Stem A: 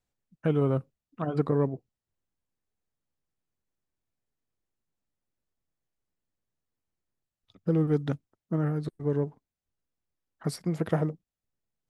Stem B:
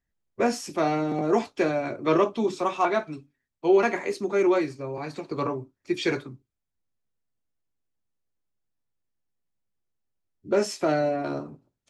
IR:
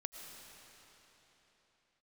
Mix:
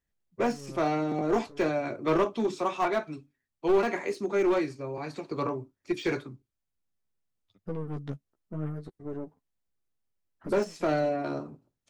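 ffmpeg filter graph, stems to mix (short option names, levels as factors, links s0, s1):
-filter_complex "[0:a]aeval=exprs='(tanh(14.1*val(0)+0.65)-tanh(0.65))/14.1':c=same,flanger=delay=9.8:depth=5.1:regen=5:speed=0.66:shape=sinusoidal,volume=0.794[s0];[1:a]deesser=1,volume=0.75,asplit=2[s1][s2];[s2]apad=whole_len=524617[s3];[s0][s3]sidechaincompress=threshold=0.0178:ratio=12:attack=11:release=1010[s4];[s4][s1]amix=inputs=2:normalize=0,aeval=exprs='clip(val(0),-1,0.0794)':c=same"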